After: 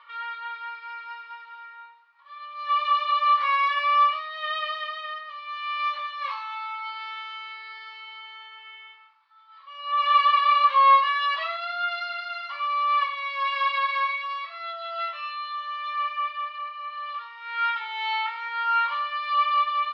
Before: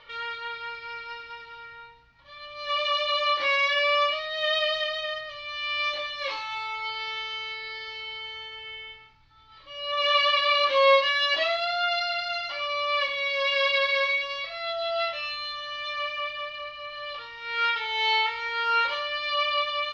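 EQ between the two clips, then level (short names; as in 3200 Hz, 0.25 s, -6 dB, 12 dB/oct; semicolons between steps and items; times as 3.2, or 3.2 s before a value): resonant high-pass 1100 Hz, resonance Q 4.9; air absorption 150 m; -5.0 dB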